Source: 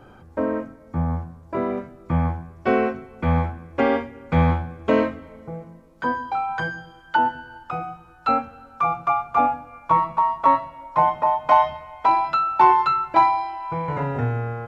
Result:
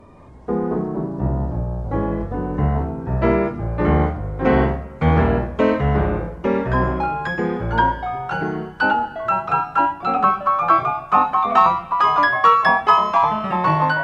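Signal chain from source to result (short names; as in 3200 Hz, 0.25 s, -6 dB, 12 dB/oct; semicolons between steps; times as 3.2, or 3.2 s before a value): speed glide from 76% -> 133%; echoes that change speed 0.168 s, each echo -2 st, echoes 3; gain +1.5 dB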